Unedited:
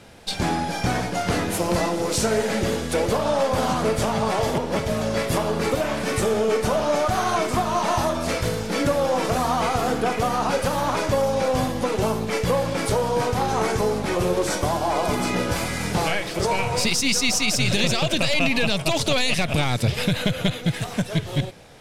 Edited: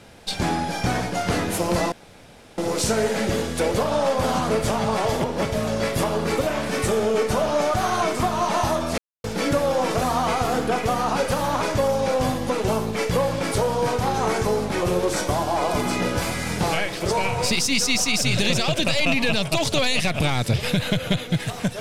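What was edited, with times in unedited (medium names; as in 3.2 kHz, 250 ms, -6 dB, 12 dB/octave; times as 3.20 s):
1.92 s: insert room tone 0.66 s
8.32–8.58 s: mute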